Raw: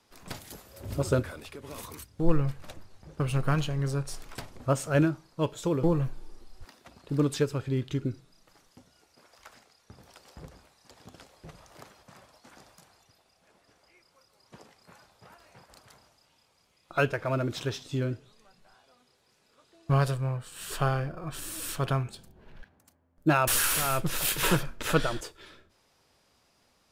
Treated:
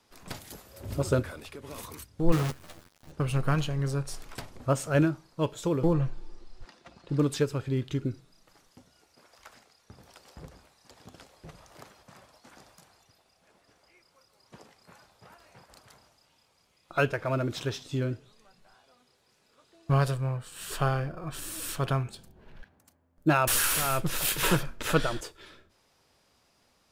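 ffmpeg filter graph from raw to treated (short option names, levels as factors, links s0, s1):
-filter_complex "[0:a]asettb=1/sr,asplit=3[s0][s1][s2];[s0]atrim=end=2.324[s3];[s1]atrim=start=2.32:end=3.12,asetpts=PTS-STARTPTS,afade=t=in:d=0.004:c=qsin,afade=t=out:st=0.796:d=0.004:c=qsin,highpass=f=72:w=0.5412,highpass=f=72:w=1.3066,acrusher=bits=6:dc=4:mix=0:aa=0.000001,asplit=2[s4][s5];[s5]adelay=12,volume=0.631[s6];[s4][s6]amix=inputs=2:normalize=0,atrim=end_sample=35280[s7];[s2]atrim=start=3.116[s8];[s3][s7]acrossfade=d=0.004:c1=hsin:c2=qsin[s9];[s9][s8]acrossfade=d=0.004:c1=qsin:c2=hsin,asettb=1/sr,asplit=3[s10][s11][s12];[s10]atrim=end=5.934[s13];[s11]atrim=start=5.93:end=7.19,asetpts=PTS-STARTPTS,afade=t=in:d=0.004:c=qsin,afade=t=out:st=1.256:d=0.004:c=qsin,lowpass=6500,aecho=1:1:5.8:0.32,atrim=end_sample=55566[s14];[s12]atrim=start=7.186[s15];[s13][s14]acrossfade=d=0.004:c1=hsin:c2=qsin[s16];[s16][s15]acrossfade=d=0.004:c1=qsin:c2=hsin"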